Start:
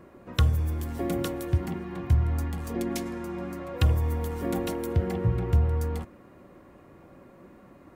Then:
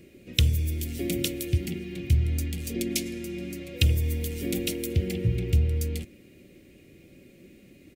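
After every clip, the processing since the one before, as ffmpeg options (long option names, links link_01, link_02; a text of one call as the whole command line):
ffmpeg -i in.wav -af "firequalizer=gain_entry='entry(400,0);entry(970,-26);entry(2300,9)':delay=0.05:min_phase=1" out.wav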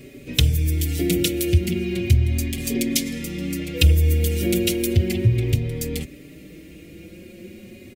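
ffmpeg -i in.wav -filter_complex "[0:a]asplit=2[link_01][link_02];[link_02]acompressor=threshold=-32dB:ratio=6,volume=2dB[link_03];[link_01][link_03]amix=inputs=2:normalize=0,asoftclip=type=tanh:threshold=-4dB,asplit=2[link_04][link_05];[link_05]adelay=4.8,afreqshift=0.35[link_06];[link_04][link_06]amix=inputs=2:normalize=1,volume=6.5dB" out.wav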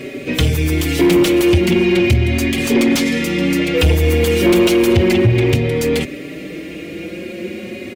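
ffmpeg -i in.wav -filter_complex "[0:a]asplit=2[link_01][link_02];[link_02]highpass=frequency=720:poles=1,volume=28dB,asoftclip=type=tanh:threshold=-1dB[link_03];[link_01][link_03]amix=inputs=2:normalize=0,lowpass=frequency=1500:poles=1,volume=-6dB" out.wav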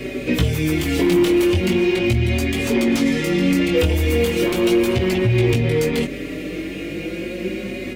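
ffmpeg -i in.wav -filter_complex "[0:a]acrossover=split=1300|3000[link_01][link_02][link_03];[link_01]acompressor=threshold=-16dB:ratio=4[link_04];[link_02]acompressor=threshold=-32dB:ratio=4[link_05];[link_03]acompressor=threshold=-32dB:ratio=4[link_06];[link_04][link_05][link_06]amix=inputs=3:normalize=0,flanger=delay=15.5:depth=7.1:speed=0.39,aeval=exprs='val(0)+0.00631*(sin(2*PI*50*n/s)+sin(2*PI*2*50*n/s)/2+sin(2*PI*3*50*n/s)/3+sin(2*PI*4*50*n/s)/4+sin(2*PI*5*50*n/s)/5)':channel_layout=same,volume=3.5dB" out.wav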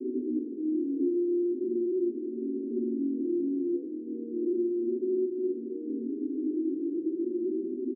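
ffmpeg -i in.wav -af "aresample=11025,asoftclip=type=hard:threshold=-24.5dB,aresample=44100,asuperpass=centerf=310:order=8:qfactor=2.1,aecho=1:1:81:0.316" out.wav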